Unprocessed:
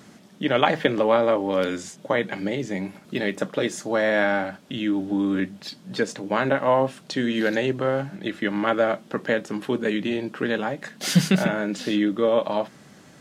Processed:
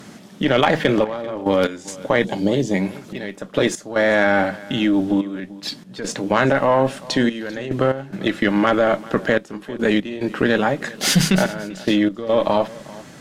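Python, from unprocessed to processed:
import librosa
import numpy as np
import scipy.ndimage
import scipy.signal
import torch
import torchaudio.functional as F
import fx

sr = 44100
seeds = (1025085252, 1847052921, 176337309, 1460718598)

p1 = fx.band_shelf(x, sr, hz=1700.0, db=-13.0, octaves=1.3, at=(2.24, 2.74))
p2 = fx.cheby_harmonics(p1, sr, harmonics=(8,), levels_db=(-28,), full_scale_db=-2.0)
p3 = fx.over_compress(p2, sr, threshold_db=-24.0, ratio=-1.0)
p4 = p2 + F.gain(torch.from_numpy(p3), 1.5).numpy()
p5 = fx.step_gate(p4, sr, bpm=72, pattern='xxxxx..x.x', floor_db=-12.0, edge_ms=4.5)
y = p5 + 10.0 ** (-20.5 / 20.0) * np.pad(p5, (int(392 * sr / 1000.0), 0))[:len(p5)]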